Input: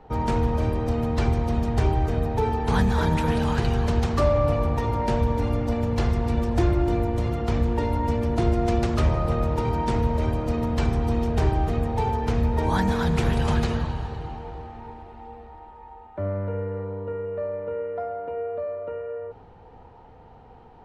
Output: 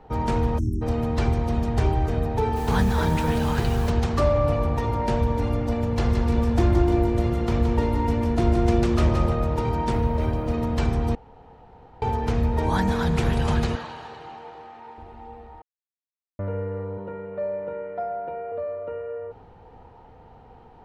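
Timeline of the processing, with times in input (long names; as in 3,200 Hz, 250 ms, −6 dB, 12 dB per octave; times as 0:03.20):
0:00.59–0:00.82: time-frequency box erased 390–5,400 Hz
0:02.55–0:03.89: background noise pink −42 dBFS
0:05.88–0:09.30: repeating echo 171 ms, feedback 45%, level −6.5 dB
0:09.92–0:10.54: linearly interpolated sample-rate reduction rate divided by 3×
0:11.15–0:12.02: fill with room tone
0:13.75–0:14.98: meter weighting curve A
0:15.62–0:16.39: silence
0:16.97–0:18.52: comb filter 5.5 ms, depth 64%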